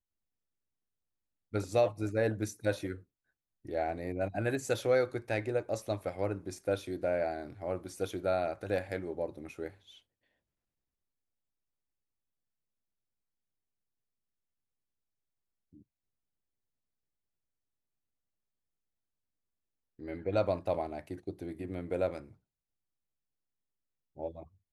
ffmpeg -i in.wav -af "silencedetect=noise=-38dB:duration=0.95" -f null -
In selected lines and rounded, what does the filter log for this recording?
silence_start: 0.00
silence_end: 1.54 | silence_duration: 1.54
silence_start: 9.68
silence_end: 20.02 | silence_duration: 10.35
silence_start: 22.19
silence_end: 24.19 | silence_duration: 2.00